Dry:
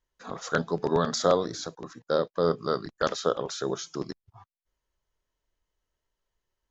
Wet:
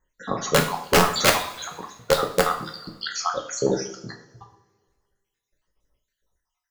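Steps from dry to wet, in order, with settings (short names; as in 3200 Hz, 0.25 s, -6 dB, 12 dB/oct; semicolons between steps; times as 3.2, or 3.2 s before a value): random spectral dropouts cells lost 69%; wrapped overs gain 18 dB; two-slope reverb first 0.47 s, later 1.7 s, from -18 dB, DRR 1.5 dB; gain +8.5 dB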